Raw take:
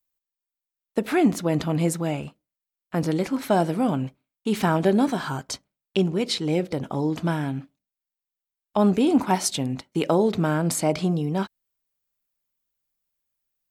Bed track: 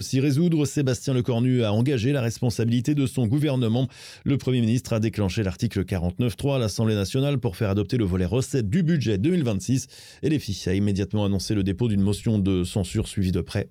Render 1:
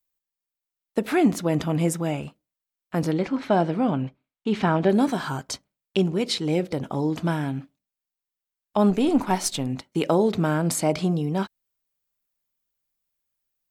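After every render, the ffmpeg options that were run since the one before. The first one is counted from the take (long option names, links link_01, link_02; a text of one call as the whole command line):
ffmpeg -i in.wav -filter_complex "[0:a]asettb=1/sr,asplit=3[link_01][link_02][link_03];[link_01]atrim=end=1.524[link_04];[link_02]atrim=start=1.52:end=2.21,asetpts=PTS-STARTPTS,afade=type=in:duration=0.004:curve=qsin,afade=type=out:start_time=0.686:duration=0.004:curve=qsin,bandreject=frequency=4200:width=8.1[link_05];[link_03]atrim=start=2.206[link_06];[link_04][link_05]acrossfade=duration=0.004:curve1=hsin:curve2=qsin[link_07];[link_07][link_06]acrossfade=duration=0.004:curve1=qsin:curve2=hsin,asettb=1/sr,asplit=3[link_08][link_09][link_10];[link_08]atrim=end=3.114[link_11];[link_09]atrim=start=3.11:end=4.9,asetpts=PTS-STARTPTS,afade=type=in:duration=0.004:curve=qsin,afade=type=out:start_time=1.786:duration=0.004:curve=qsin,lowpass=3900[link_12];[link_10]atrim=start=4.896[link_13];[link_11][link_12]acrossfade=duration=0.004:curve1=hsin:curve2=qsin[link_14];[link_14][link_13]acrossfade=duration=0.004:curve1=qsin:curve2=hsin,asettb=1/sr,asplit=3[link_15][link_16][link_17];[link_15]atrim=end=8.904[link_18];[link_16]atrim=start=8.9:end=9.67,asetpts=PTS-STARTPTS,afade=type=in:duration=0.004:curve=qsin,afade=type=out:start_time=0.766:duration=0.004:curve=qsin,aeval=exprs='if(lt(val(0),0),0.708*val(0),val(0))':channel_layout=same[link_19];[link_17]atrim=start=9.666[link_20];[link_18][link_19]acrossfade=duration=0.004:curve1=hsin:curve2=qsin[link_21];[link_21][link_20]acrossfade=duration=0.004:curve1=qsin:curve2=hsin" out.wav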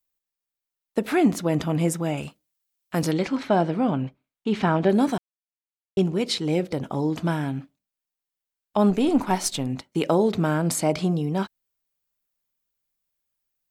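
ffmpeg -i in.wav -filter_complex "[0:a]asettb=1/sr,asplit=3[link_01][link_02][link_03];[link_01]atrim=end=2.174[link_04];[link_02]atrim=start=2.17:end=3.43,asetpts=PTS-STARTPTS,afade=type=in:duration=0.004:curve=qsin,afade=type=out:start_time=1.256:duration=0.004:curve=qsin,highshelf=frequency=2600:gain=9[link_05];[link_03]atrim=start=3.426[link_06];[link_04][link_05]acrossfade=duration=0.004:curve1=hsin:curve2=qsin[link_07];[link_07][link_06]acrossfade=duration=0.004:curve1=qsin:curve2=hsin,asplit=3[link_08][link_09][link_10];[link_08]atrim=end=5.18,asetpts=PTS-STARTPTS,afade=type=out:start_time=5.176:duration=0.004:curve=hsin[link_11];[link_09]atrim=start=5.18:end=5.97,asetpts=PTS-STARTPTS,volume=0[link_12];[link_10]atrim=start=5.97,asetpts=PTS-STARTPTS,afade=type=in:duration=0.004:curve=hsin[link_13];[link_11][link_12][link_13]concat=n=3:v=0:a=1" out.wav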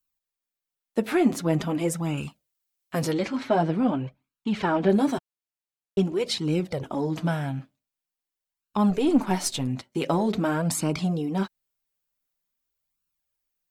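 ffmpeg -i in.wav -filter_complex "[0:a]flanger=delay=0.7:depth=8.2:regen=-3:speed=0.46:shape=sinusoidal,asplit=2[link_01][link_02];[link_02]asoftclip=type=tanh:threshold=-24dB,volume=-11dB[link_03];[link_01][link_03]amix=inputs=2:normalize=0" out.wav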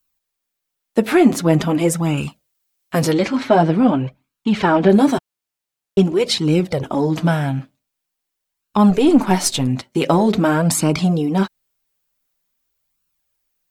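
ffmpeg -i in.wav -af "volume=9dB,alimiter=limit=-2dB:level=0:latency=1" out.wav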